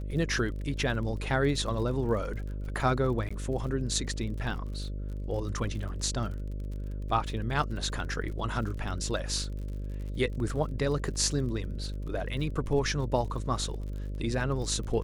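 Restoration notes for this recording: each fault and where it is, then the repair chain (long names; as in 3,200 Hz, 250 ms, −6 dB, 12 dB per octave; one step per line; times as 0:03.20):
mains buzz 50 Hz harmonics 12 −35 dBFS
surface crackle 48 per second −39 dBFS
0:03.29–0:03.31: drop-out 15 ms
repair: click removal
hum removal 50 Hz, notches 12
repair the gap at 0:03.29, 15 ms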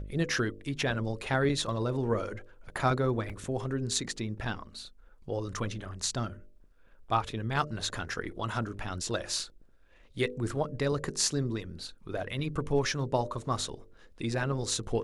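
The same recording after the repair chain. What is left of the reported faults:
none of them is left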